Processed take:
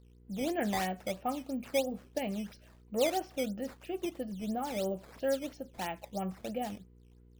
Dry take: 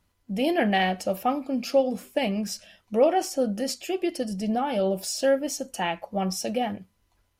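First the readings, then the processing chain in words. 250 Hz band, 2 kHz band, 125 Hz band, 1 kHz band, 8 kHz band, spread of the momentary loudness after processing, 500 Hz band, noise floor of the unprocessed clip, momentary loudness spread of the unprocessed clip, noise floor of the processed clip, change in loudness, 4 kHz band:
-9.0 dB, -10.0 dB, -8.5 dB, -9.5 dB, -11.0 dB, 8 LU, -9.5 dB, -70 dBFS, 8 LU, -59 dBFS, -9.5 dB, -10.0 dB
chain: distance through air 260 m; mains buzz 60 Hz, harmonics 8, -50 dBFS -6 dB/octave; decimation with a swept rate 9×, swing 160% 3 Hz; trim -8.5 dB

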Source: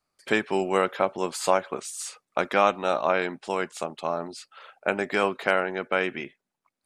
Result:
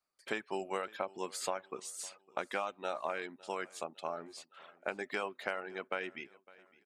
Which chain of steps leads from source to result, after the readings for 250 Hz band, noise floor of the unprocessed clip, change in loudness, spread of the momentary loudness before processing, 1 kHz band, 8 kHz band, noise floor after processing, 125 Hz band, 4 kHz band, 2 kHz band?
-15.0 dB, -84 dBFS, -13.0 dB, 11 LU, -13.0 dB, -8.5 dB, -74 dBFS, -17.5 dB, -10.5 dB, -12.5 dB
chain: reverb removal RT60 0.69 s; bass shelf 200 Hz -10.5 dB; compression, threshold -24 dBFS, peak gain reduction 9 dB; on a send: feedback delay 557 ms, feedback 43%, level -22.5 dB; on the sum: trim -7.5 dB

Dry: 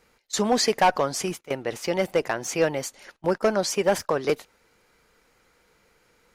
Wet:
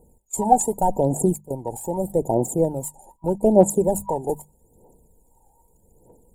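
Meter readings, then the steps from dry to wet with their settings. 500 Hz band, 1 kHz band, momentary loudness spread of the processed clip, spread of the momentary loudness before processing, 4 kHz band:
+3.0 dB, +3.5 dB, 14 LU, 9 LU, under -25 dB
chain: FFT band-reject 970–6800 Hz; phaser 0.81 Hz, delay 1.3 ms, feedback 78%; hum notches 50/100/150/200 Hz; trim +3 dB

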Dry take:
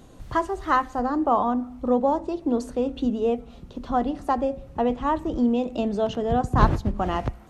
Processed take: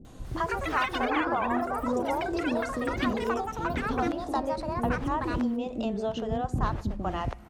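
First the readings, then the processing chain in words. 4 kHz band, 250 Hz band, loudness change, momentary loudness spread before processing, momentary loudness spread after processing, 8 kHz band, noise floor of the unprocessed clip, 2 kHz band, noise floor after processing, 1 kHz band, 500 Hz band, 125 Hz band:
+1.5 dB, -5.5 dB, -5.0 dB, 6 LU, 4 LU, no reading, -47 dBFS, +3.0 dB, -44 dBFS, -5.0 dB, -5.5 dB, -4.5 dB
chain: compression 2.5:1, threshold -30 dBFS, peak gain reduction 12.5 dB; ever faster or slower copies 215 ms, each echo +6 st, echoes 3; bands offset in time lows, highs 50 ms, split 440 Hz; trim +1.5 dB

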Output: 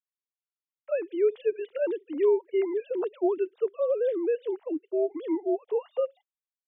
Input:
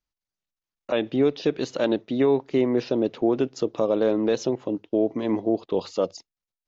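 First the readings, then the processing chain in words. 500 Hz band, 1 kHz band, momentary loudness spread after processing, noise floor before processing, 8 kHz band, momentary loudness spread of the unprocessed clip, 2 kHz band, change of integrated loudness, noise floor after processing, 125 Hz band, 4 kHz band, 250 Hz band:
-2.5 dB, -6.5 dB, 6 LU, under -85 dBFS, no reading, 6 LU, -8.0 dB, -4.0 dB, under -85 dBFS, under -35 dB, under -15 dB, -8.5 dB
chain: formants replaced by sine waves; trim -4 dB

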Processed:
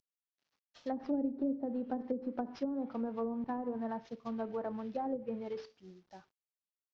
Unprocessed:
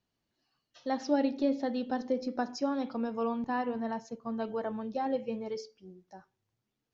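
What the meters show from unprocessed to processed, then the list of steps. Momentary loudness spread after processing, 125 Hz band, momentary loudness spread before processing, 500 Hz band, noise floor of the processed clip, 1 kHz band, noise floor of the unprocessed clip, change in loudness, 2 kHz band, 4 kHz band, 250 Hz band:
9 LU, -3.0 dB, 10 LU, -5.5 dB, under -85 dBFS, -6.5 dB, -85 dBFS, -4.5 dB, -11.5 dB, under -10 dB, -3.5 dB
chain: CVSD coder 32 kbps; low-pass that closes with the level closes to 390 Hz, closed at -26.5 dBFS; trim -3 dB

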